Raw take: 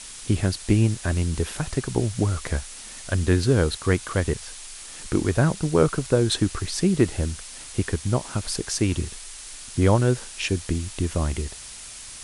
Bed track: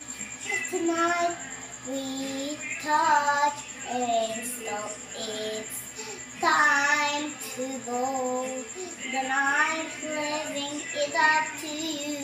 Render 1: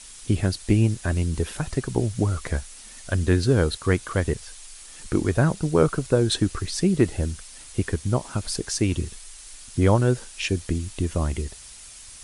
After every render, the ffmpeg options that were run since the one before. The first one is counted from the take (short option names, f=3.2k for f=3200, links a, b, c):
-af "afftdn=nr=6:nf=-40"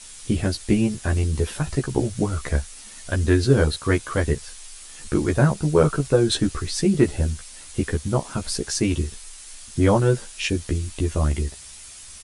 -filter_complex "[0:a]asplit=2[a][b];[b]adelay=14,volume=-2.5dB[c];[a][c]amix=inputs=2:normalize=0"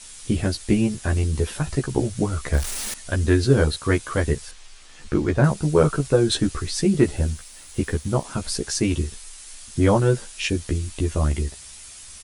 -filter_complex "[0:a]asettb=1/sr,asplit=3[a][b][c];[a]atrim=end=2.534[d];[b]atrim=start=2.53:end=2.94,asetpts=PTS-STARTPTS,afade=t=in:d=0.004:c=qsin,afade=t=out:st=0.406:d=0.004:c=qsin,aeval=exprs='val(0)+0.5*0.0562*sgn(val(0))':c=same[e];[c]atrim=start=2.936[f];[d][e]acrossfade=d=0.004:c1=hsin:c2=qsin[g];[g][f]acrossfade=d=0.004:c1=qsin:c2=hsin,asettb=1/sr,asplit=3[h][i][j];[h]atrim=end=4.514[k];[i]atrim=start=4.51:end=5.44,asetpts=PTS-STARTPTS,afade=t=in:d=0.004:c=qsin,afade=t=out:st=0.926:d=0.004:c=qsin,adynamicsmooth=sensitivity=1.5:basefreq=5.1k[l];[j]atrim=start=5.436[m];[k][l]acrossfade=d=0.004:c1=hsin:c2=qsin[n];[n][m]acrossfade=d=0.004:c1=qsin:c2=hsin,asettb=1/sr,asplit=3[o][p][q];[o]atrim=end=7.174[r];[p]atrim=start=7.17:end=8.24,asetpts=PTS-STARTPTS,afade=t=in:d=0.004:c=qsin,afade=t=out:st=1.066:d=0.004:c=qsin,aeval=exprs='sgn(val(0))*max(abs(val(0))-0.00237,0)':c=same[s];[q]atrim=start=8.236[t];[r][s]acrossfade=d=0.004:c1=hsin:c2=qsin[u];[u][t]acrossfade=d=0.004:c1=qsin:c2=hsin"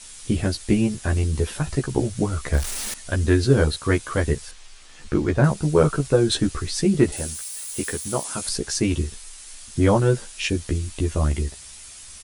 -filter_complex "[0:a]asettb=1/sr,asplit=3[a][b][c];[a]atrim=end=7.124[d];[b]atrim=start=7.12:end=8.49,asetpts=PTS-STARTPTS,afade=t=in:d=0.004:c=qsin,afade=t=out:st=1.366:d=0.004:c=qsin,aemphasis=mode=production:type=bsi[e];[c]atrim=start=8.486[f];[d][e]acrossfade=d=0.004:c1=hsin:c2=qsin[g];[g][f]acrossfade=d=0.004:c1=qsin:c2=hsin"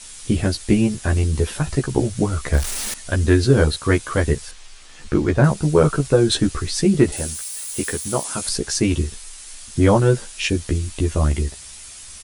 -af "volume=3dB,alimiter=limit=-3dB:level=0:latency=1"